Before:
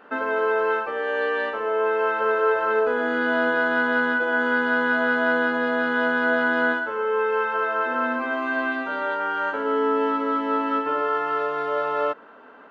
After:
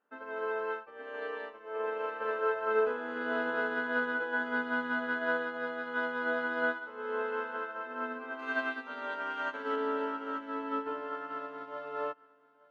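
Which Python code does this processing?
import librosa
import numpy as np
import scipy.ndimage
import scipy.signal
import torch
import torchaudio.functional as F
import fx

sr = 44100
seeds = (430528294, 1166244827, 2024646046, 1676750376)

y = fx.high_shelf(x, sr, hz=2100.0, db=10.5, at=(8.39, 9.76))
y = fx.echo_feedback(y, sr, ms=873, feedback_pct=28, wet_db=-9.0)
y = fx.upward_expand(y, sr, threshold_db=-34.0, expansion=2.5)
y = y * librosa.db_to_amplitude(-6.5)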